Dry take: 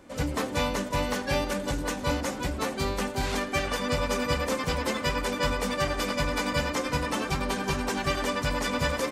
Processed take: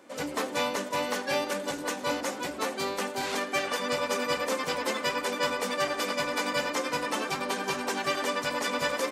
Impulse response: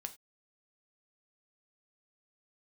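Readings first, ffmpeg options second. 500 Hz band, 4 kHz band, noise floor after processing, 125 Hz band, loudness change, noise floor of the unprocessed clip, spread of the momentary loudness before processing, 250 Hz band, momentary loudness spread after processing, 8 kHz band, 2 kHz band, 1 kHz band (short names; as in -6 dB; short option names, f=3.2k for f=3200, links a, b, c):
-0.5 dB, 0.0 dB, -38 dBFS, -14.5 dB, -1.0 dB, -36 dBFS, 2 LU, -4.5 dB, 3 LU, 0.0 dB, 0.0 dB, 0.0 dB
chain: -af "highpass=300"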